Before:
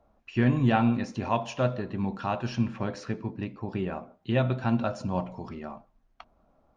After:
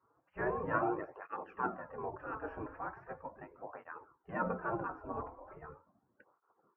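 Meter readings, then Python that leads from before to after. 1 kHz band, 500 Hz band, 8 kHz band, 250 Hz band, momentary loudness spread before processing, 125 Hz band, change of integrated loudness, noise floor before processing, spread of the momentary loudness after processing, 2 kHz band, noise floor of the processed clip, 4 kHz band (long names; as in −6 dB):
−6.0 dB, −8.5 dB, can't be measured, −16.5 dB, 15 LU, −21.0 dB, −11.0 dB, −67 dBFS, 17 LU, −5.5 dB, −78 dBFS, below −30 dB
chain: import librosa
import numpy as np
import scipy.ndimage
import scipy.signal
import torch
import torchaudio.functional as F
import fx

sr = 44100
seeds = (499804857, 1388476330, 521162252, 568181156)

y = scipy.signal.sosfilt(scipy.signal.cheby2(4, 50, 3500.0, 'lowpass', fs=sr, output='sos'), x)
y = fx.spec_gate(y, sr, threshold_db=-15, keep='weak')
y = fx.flanger_cancel(y, sr, hz=0.39, depth_ms=5.9)
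y = F.gain(torch.from_numpy(y), 6.0).numpy()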